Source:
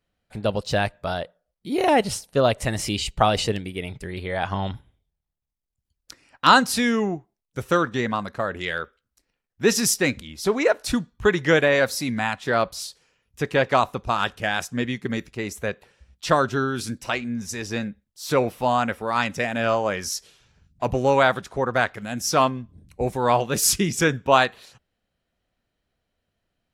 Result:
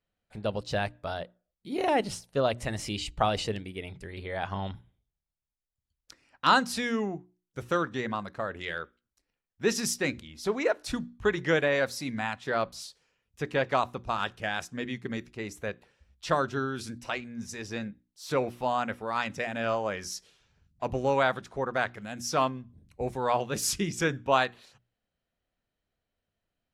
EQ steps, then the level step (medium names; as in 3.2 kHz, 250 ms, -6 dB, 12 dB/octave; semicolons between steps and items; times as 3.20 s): treble shelf 11 kHz -10 dB; hum notches 60/120/180/240/300/360 Hz; -7.0 dB